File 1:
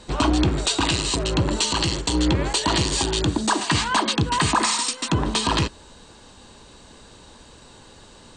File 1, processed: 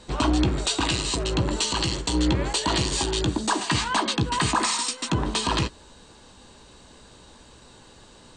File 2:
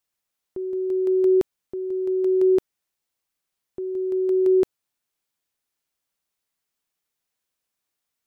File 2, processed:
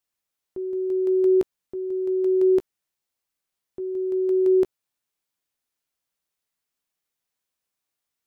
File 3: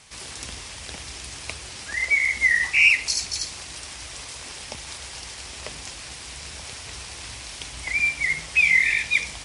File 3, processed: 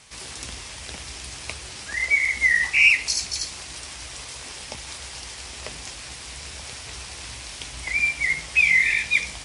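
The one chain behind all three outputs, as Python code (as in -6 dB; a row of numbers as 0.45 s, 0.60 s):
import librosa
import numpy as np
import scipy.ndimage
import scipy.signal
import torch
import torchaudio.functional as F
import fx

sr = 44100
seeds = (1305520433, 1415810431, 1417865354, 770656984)

y = fx.doubler(x, sr, ms=16.0, db=-12.5)
y = y * 10.0 ** (-26 / 20.0) / np.sqrt(np.mean(np.square(y)))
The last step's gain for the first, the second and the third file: -3.0 dB, -2.0 dB, 0.0 dB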